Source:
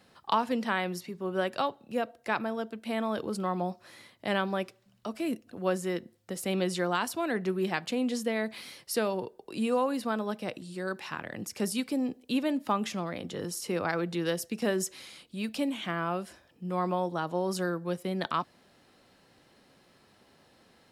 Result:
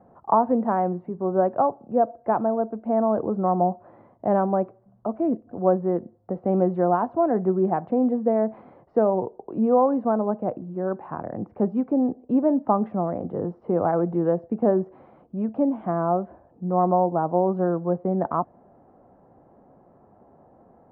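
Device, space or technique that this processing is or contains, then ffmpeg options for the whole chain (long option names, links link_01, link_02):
under water: -af "lowpass=frequency=1000:width=0.5412,lowpass=frequency=1000:width=1.3066,equalizer=frequency=710:width_type=o:width=0.4:gain=6,volume=8dB"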